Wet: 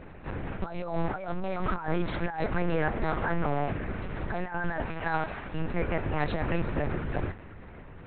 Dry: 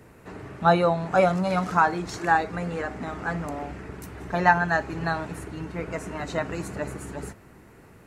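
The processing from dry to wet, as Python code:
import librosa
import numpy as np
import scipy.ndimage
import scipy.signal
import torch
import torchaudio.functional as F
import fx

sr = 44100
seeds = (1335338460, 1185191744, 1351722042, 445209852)

y = fx.highpass(x, sr, hz=480.0, slope=12, at=(4.86, 5.54))
y = fx.over_compress(y, sr, threshold_db=-30.0, ratio=-1.0)
y = fx.lpc_vocoder(y, sr, seeds[0], excitation='pitch_kept', order=8)
y = y * 10.0 ** (1.0 / 20.0)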